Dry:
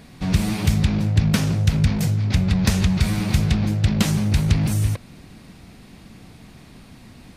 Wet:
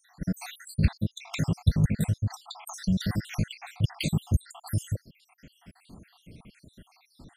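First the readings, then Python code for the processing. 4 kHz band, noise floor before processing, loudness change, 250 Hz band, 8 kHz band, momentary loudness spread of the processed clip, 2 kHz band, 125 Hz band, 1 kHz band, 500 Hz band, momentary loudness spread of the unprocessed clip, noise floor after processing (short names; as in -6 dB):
-9.5 dB, -46 dBFS, -9.5 dB, -9.5 dB, -10.0 dB, 10 LU, -10.0 dB, -9.0 dB, -10.0 dB, -10.0 dB, 3 LU, -67 dBFS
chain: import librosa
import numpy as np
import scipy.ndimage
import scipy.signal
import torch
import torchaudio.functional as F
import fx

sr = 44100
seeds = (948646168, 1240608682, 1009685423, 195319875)

y = fx.spec_dropout(x, sr, seeds[0], share_pct=77)
y = F.gain(torch.from_numpy(y), -3.0).numpy()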